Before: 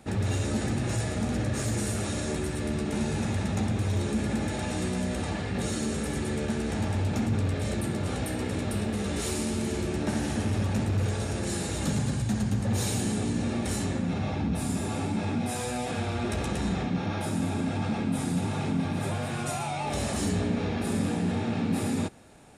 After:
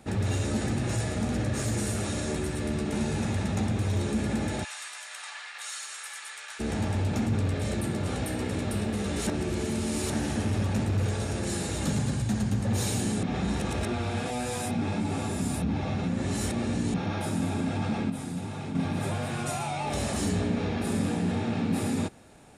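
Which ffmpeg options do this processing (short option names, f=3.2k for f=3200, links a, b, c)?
-filter_complex "[0:a]asplit=3[a][b][c];[a]afade=t=out:st=4.63:d=0.02[d];[b]highpass=f=1.1k:w=0.5412,highpass=f=1.1k:w=1.3066,afade=t=in:st=4.63:d=0.02,afade=t=out:st=6.59:d=0.02[e];[c]afade=t=in:st=6.59:d=0.02[f];[d][e][f]amix=inputs=3:normalize=0,asplit=7[g][h][i][j][k][l][m];[g]atrim=end=9.272[n];[h]atrim=start=9.268:end=10.102,asetpts=PTS-STARTPTS,areverse[o];[i]atrim=start=10.098:end=13.232[p];[j]atrim=start=13.228:end=16.942,asetpts=PTS-STARTPTS,areverse[q];[k]atrim=start=16.938:end=18.102[r];[l]atrim=start=18.098:end=18.752,asetpts=PTS-STARTPTS,volume=-6dB[s];[m]atrim=start=18.748[t];[n][o]acrossfade=d=0.004:c1=hsin:c2=hsin[u];[u][p]acrossfade=d=0.004:c1=hsin:c2=hsin[v];[v][q]acrossfade=d=0.004:c1=hsin:c2=hsin[w];[w][r]acrossfade=d=0.004:c1=hsin:c2=hsin[x];[x][s]acrossfade=d=0.004:c1=hsin:c2=hsin[y];[y][t]acrossfade=d=0.004:c1=hsin:c2=hsin"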